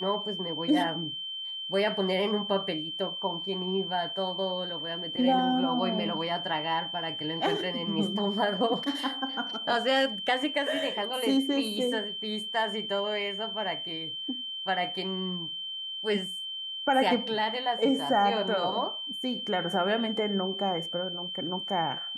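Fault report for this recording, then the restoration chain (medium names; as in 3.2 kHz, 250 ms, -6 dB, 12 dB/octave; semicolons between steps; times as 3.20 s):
whine 3.1 kHz -34 dBFS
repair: band-stop 3.1 kHz, Q 30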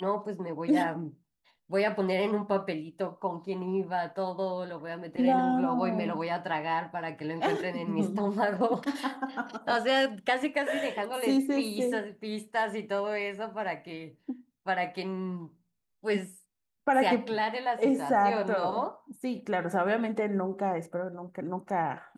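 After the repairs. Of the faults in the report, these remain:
nothing left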